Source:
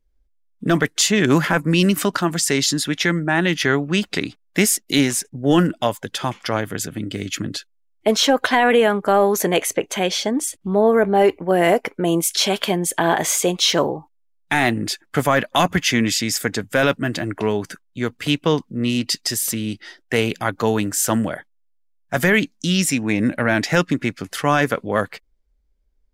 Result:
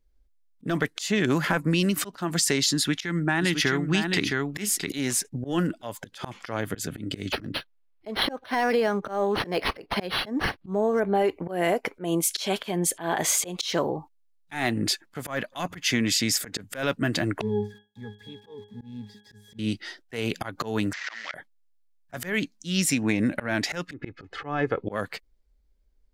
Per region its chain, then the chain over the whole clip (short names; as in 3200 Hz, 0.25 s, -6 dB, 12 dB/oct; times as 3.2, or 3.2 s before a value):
2.75–4.9 bell 570 Hz -7 dB 0.56 oct + echo 0.664 s -7 dB
7.32–11 high shelf 7600 Hz +3 dB + decimation joined by straight lines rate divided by 6×
17.41–19.59 switching spikes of -13.5 dBFS + octave resonator G#, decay 0.27 s
20.93–21.34 CVSD 32 kbps + resonant high-pass 1900 Hz, resonance Q 5.2
23.93–24.87 tape spacing loss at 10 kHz 38 dB + comb 2.4 ms, depth 57%
whole clip: bell 4300 Hz +3 dB 0.31 oct; compressor 5:1, threshold -20 dBFS; auto swell 0.15 s